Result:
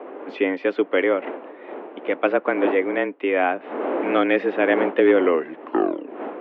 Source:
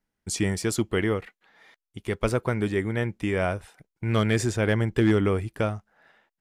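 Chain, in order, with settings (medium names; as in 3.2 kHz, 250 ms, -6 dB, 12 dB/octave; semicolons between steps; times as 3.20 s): tape stop on the ending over 1.25 s; wind noise 460 Hz -36 dBFS; mistuned SSB +87 Hz 190–2900 Hz; trim +6 dB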